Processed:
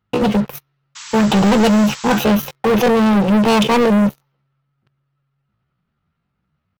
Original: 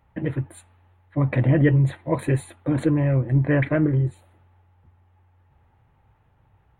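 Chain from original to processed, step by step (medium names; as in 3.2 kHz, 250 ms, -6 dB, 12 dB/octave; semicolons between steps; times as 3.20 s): pitch shift +7.5 st; waveshaping leveller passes 5; painted sound noise, 0.95–2.24 s, 850–8000 Hz -33 dBFS; trim -1.5 dB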